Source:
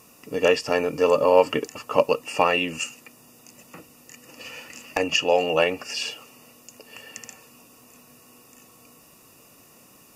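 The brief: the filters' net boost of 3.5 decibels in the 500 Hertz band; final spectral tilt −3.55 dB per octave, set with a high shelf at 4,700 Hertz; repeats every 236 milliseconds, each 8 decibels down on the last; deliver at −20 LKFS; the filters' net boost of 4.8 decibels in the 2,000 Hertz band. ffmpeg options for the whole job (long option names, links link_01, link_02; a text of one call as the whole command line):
ffmpeg -i in.wav -af "equalizer=frequency=500:width_type=o:gain=3.5,equalizer=frequency=2000:width_type=o:gain=8.5,highshelf=frequency=4700:gain=-6.5,aecho=1:1:236|472|708|944|1180:0.398|0.159|0.0637|0.0255|0.0102,volume=-1.5dB" out.wav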